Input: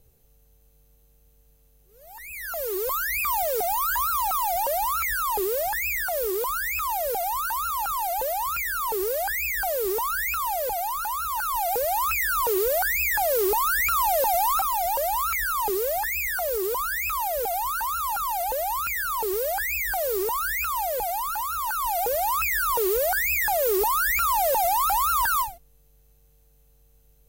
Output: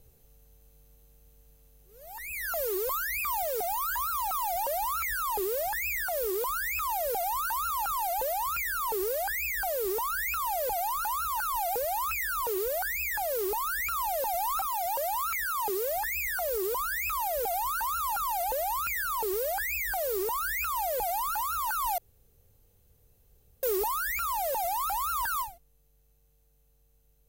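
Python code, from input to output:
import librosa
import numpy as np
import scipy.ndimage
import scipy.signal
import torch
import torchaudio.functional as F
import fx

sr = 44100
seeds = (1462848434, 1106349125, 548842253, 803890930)

y = fx.low_shelf(x, sr, hz=86.0, db=-10.0, at=(14.66, 15.92))
y = fx.edit(y, sr, fx.room_tone_fill(start_s=21.98, length_s=1.65), tone=tone)
y = fx.rider(y, sr, range_db=10, speed_s=0.5)
y = y * 10.0 ** (-5.0 / 20.0)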